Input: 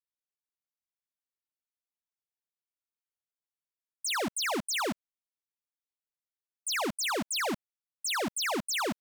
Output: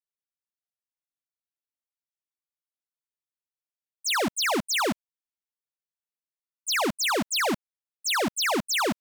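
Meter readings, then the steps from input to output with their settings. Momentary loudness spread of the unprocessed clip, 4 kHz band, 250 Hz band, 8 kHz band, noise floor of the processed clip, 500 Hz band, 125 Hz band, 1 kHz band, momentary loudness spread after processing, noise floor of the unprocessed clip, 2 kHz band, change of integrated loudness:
7 LU, +5.5 dB, +6.0 dB, +4.0 dB, below −85 dBFS, +6.0 dB, +6.0 dB, +6.0 dB, 8 LU, below −85 dBFS, +6.0 dB, +5.5 dB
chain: noise gate −34 dBFS, range −14 dB
level +6 dB

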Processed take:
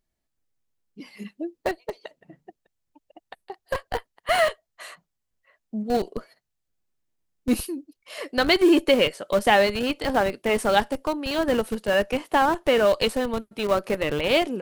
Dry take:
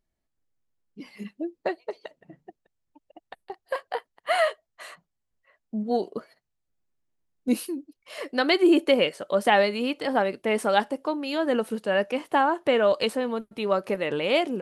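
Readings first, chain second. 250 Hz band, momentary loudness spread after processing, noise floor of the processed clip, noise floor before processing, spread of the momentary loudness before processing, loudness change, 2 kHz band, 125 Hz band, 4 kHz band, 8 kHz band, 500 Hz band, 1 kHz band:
+1.5 dB, 18 LU, −80 dBFS, −80 dBFS, 19 LU, +2.0 dB, +2.5 dB, can't be measured, +3.5 dB, +6.0 dB, +1.5 dB, +1.5 dB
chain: high-shelf EQ 2,500 Hz +4 dB
in parallel at −5 dB: comparator with hysteresis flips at −22 dBFS

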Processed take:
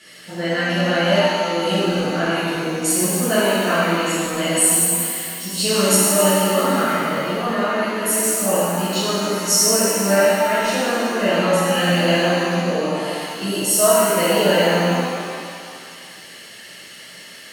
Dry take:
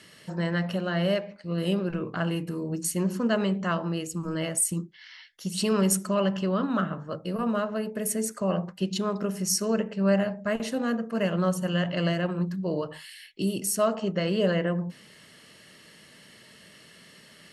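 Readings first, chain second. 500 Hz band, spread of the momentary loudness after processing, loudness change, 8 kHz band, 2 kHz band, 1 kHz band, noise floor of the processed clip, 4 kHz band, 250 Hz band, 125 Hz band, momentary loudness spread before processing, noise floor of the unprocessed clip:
+10.5 dB, 20 LU, +10.0 dB, +13.5 dB, +14.0 dB, +13.5 dB, −40 dBFS, +14.0 dB, +5.5 dB, +4.5 dB, 8 LU, −53 dBFS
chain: low-shelf EQ 360 Hz −10.5 dB
notch filter 1,000 Hz, Q 6.8
reverb with rising layers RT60 2.2 s, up +7 semitones, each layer −8 dB, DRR −11.5 dB
level +1.5 dB

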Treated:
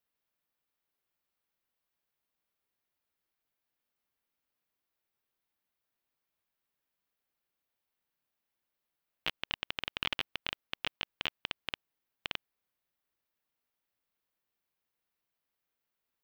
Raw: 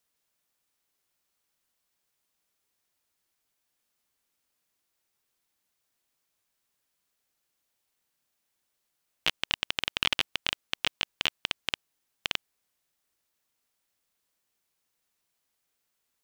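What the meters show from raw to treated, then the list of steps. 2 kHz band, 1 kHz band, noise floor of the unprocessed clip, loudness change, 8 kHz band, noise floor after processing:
−6.5 dB, −5.5 dB, −80 dBFS, −7.5 dB, −15.0 dB, below −85 dBFS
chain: parametric band 7,500 Hz −12 dB 1.3 octaves
level −5 dB

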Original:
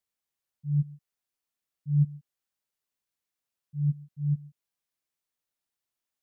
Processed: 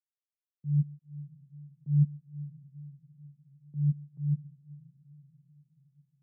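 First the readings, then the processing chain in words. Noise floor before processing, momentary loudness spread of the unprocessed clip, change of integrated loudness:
below −85 dBFS, 16 LU, −2.0 dB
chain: low-shelf EQ 250 Hz +5 dB
noise gate with hold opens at −44 dBFS
resonant band-pass 240 Hz, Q 1.2
feedback delay with all-pass diffusion 511 ms, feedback 53%, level −15.5 dB

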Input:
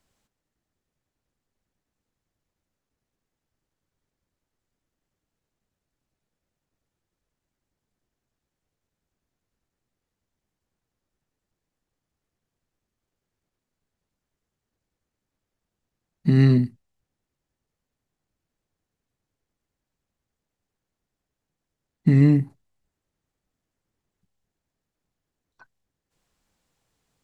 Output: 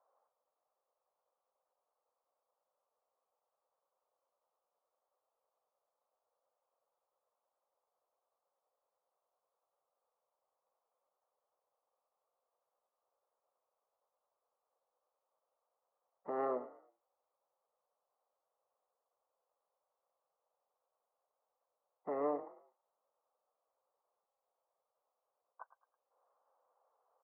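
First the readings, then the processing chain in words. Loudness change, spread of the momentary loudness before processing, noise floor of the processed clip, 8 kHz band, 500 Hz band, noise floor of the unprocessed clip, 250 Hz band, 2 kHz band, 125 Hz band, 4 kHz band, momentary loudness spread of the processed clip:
−20.0 dB, 13 LU, below −85 dBFS, can't be measured, −6.5 dB, −85 dBFS, −27.5 dB, −19.5 dB, below −40 dB, below −30 dB, 22 LU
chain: elliptic band-pass filter 510–1,200 Hz, stop band 80 dB
echo with shifted repeats 108 ms, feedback 36%, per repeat +31 Hz, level −16 dB
level +5.5 dB

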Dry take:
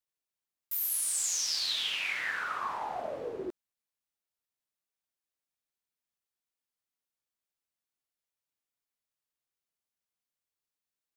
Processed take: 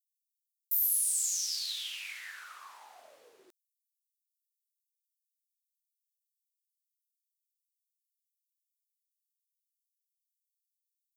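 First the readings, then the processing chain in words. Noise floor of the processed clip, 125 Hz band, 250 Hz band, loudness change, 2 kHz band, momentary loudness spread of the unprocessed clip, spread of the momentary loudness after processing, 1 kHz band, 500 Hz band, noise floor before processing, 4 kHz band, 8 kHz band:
below −85 dBFS, below −30 dB, −26.5 dB, +1.5 dB, −11.0 dB, 10 LU, 19 LU, −16.5 dB, −22.5 dB, below −85 dBFS, −5.0 dB, +0.5 dB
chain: first difference

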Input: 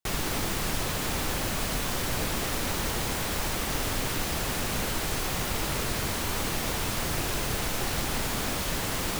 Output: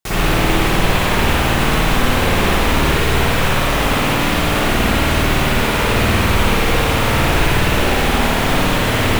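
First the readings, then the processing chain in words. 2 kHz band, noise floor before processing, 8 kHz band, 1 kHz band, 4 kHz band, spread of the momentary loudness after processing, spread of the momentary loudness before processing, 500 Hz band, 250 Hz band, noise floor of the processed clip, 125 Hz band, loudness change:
+15.5 dB, −31 dBFS, +5.0 dB, +15.5 dB, +12.0 dB, 1 LU, 0 LU, +15.5 dB, +15.5 dB, −17 dBFS, +15.5 dB, +13.5 dB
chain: loose part that buzzes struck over −30 dBFS, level −25 dBFS
spring reverb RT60 1.6 s, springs 53 ms, chirp 50 ms, DRR −10 dB
level +5 dB

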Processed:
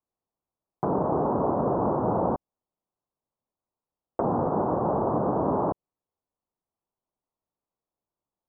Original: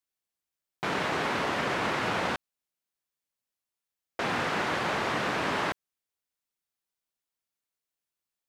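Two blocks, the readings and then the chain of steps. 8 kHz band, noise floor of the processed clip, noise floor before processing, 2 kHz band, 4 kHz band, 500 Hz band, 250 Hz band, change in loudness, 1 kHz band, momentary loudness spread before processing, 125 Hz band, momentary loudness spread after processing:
below −35 dB, below −85 dBFS, below −85 dBFS, −22.5 dB, below −40 dB, +7.5 dB, +8.0 dB, +3.0 dB, +3.0 dB, 6 LU, +8.0 dB, 6 LU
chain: Butterworth low-pass 1,100 Hz 36 dB per octave
treble cut that deepens with the level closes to 870 Hz, closed at −32.5 dBFS
level +8 dB

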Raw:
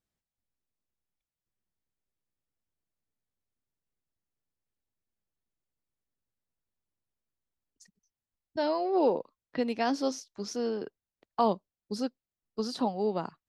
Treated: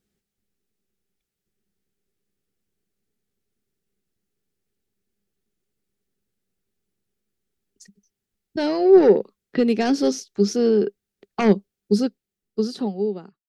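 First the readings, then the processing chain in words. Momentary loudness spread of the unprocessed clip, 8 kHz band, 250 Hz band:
12 LU, +8.5 dB, +12.0 dB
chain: fade-out on the ending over 1.68 s
sine wavefolder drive 5 dB, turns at −13 dBFS
thirty-one-band graphic EQ 200 Hz +11 dB, 400 Hz +12 dB, 630 Hz −6 dB, 1,000 Hz −11 dB

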